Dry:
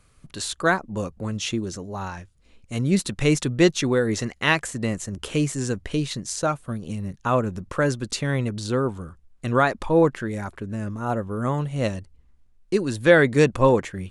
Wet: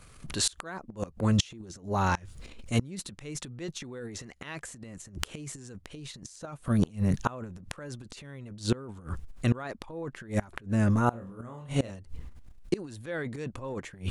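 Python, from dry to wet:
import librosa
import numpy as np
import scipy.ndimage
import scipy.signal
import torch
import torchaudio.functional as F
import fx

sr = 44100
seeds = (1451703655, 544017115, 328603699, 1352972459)

y = fx.transient(x, sr, attack_db=-4, sustain_db=12)
y = fx.room_flutter(y, sr, wall_m=4.4, rt60_s=0.33, at=(11.1, 11.91))
y = fx.gate_flip(y, sr, shuts_db=-18.0, range_db=-25)
y = F.gain(torch.from_numpy(y), 5.0).numpy()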